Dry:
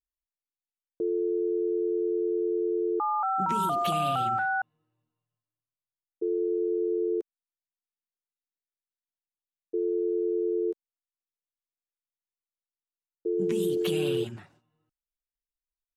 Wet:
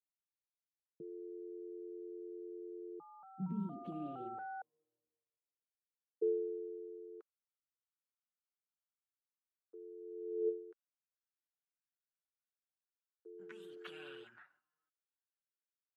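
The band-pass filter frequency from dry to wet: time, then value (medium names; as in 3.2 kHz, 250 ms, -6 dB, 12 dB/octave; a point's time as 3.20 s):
band-pass filter, Q 5.2
3.38 s 160 Hz
4.45 s 470 Hz
6.28 s 470 Hz
7.08 s 1.3 kHz
9.97 s 1.3 kHz
10.48 s 460 Hz
10.66 s 1.5 kHz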